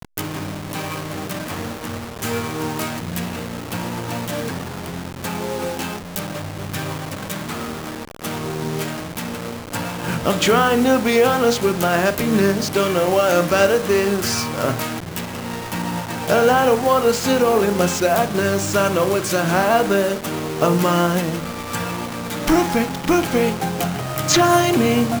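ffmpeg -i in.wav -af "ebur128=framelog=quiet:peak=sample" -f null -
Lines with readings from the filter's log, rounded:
Integrated loudness:
  I:         -20.1 LUFS
  Threshold: -30.1 LUFS
Loudness range:
  LRA:        10.2 LU
  Threshold: -40.2 LUFS
  LRA low:   -27.4 LUFS
  LRA high:  -17.2 LUFS
Sample peak:
  Peak:       -2.0 dBFS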